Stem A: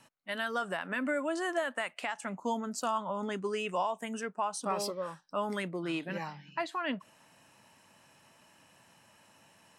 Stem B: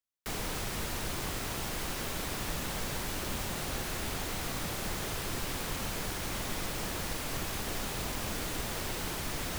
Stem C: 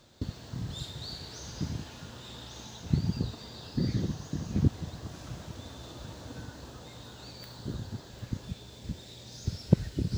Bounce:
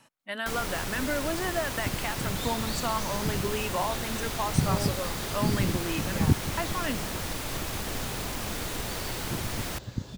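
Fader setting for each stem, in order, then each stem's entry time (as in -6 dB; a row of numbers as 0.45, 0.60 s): +1.5, +2.0, +2.0 dB; 0.00, 0.20, 1.65 s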